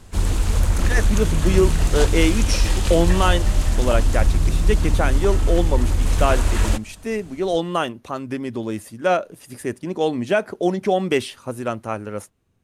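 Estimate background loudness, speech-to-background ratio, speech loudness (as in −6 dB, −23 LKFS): −21.5 LKFS, −2.5 dB, −24.0 LKFS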